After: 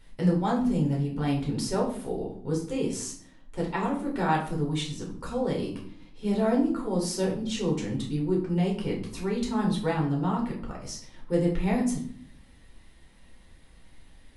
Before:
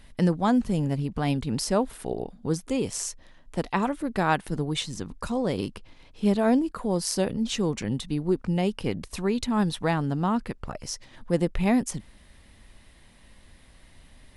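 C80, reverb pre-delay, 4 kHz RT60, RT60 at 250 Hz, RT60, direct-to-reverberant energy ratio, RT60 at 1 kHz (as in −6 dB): 11.0 dB, 7 ms, 0.40 s, 0.95 s, 0.60 s, −2.5 dB, 0.55 s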